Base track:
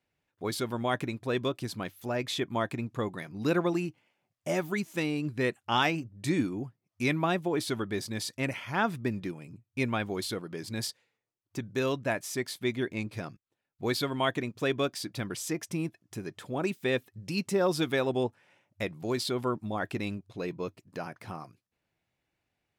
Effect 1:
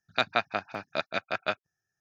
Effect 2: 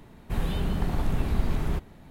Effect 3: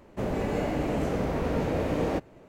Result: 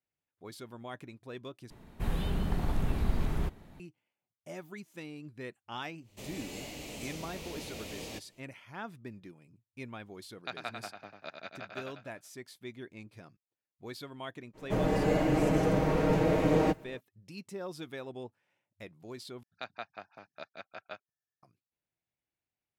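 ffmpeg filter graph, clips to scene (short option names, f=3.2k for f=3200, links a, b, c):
-filter_complex "[3:a]asplit=2[a][b];[1:a]asplit=2[c][d];[0:a]volume=-14dB[e];[a]aexciter=amount=4.9:drive=9:freq=2.3k[f];[c]aecho=1:1:96|192|288|384|480|576:0.531|0.25|0.117|0.0551|0.0259|0.0122[g];[b]aecho=1:1:6.4:0.78[h];[d]equalizer=f=710:w=0.86:g=3[i];[e]asplit=3[j][k][l];[j]atrim=end=1.704[m];[2:a]atrim=end=2.1,asetpts=PTS-STARTPTS,volume=-4dB[n];[k]atrim=start=3.796:end=19.434[o];[i]atrim=end=2,asetpts=PTS-STARTPTS,volume=-17dB[p];[l]atrim=start=21.426[q];[f]atrim=end=2.48,asetpts=PTS-STARTPTS,volume=-17.5dB,afade=t=in:d=0.1,afade=t=out:st=2.38:d=0.1,adelay=6000[r];[g]atrim=end=2,asetpts=PTS-STARTPTS,volume=-14dB,afade=t=in:d=0.004:c=hsin,afade=t=out:st=1.996:d=0.004:c=hsin,adelay=10290[s];[h]atrim=end=2.48,asetpts=PTS-STARTPTS,volume=-1dB,afade=t=in:d=0.05,afade=t=out:st=2.43:d=0.05,adelay=14530[t];[m][n]acrossfade=d=0.004:c1=hsin:c2=hsin[u];[u][o]acrossfade=d=0.004:c1=hsin:c2=hsin[v];[v][p]acrossfade=d=0.004:c1=hsin:c2=hsin[w];[w][q]acrossfade=d=0.004:c1=hsin:c2=hsin[x];[x][r][s][t]amix=inputs=4:normalize=0"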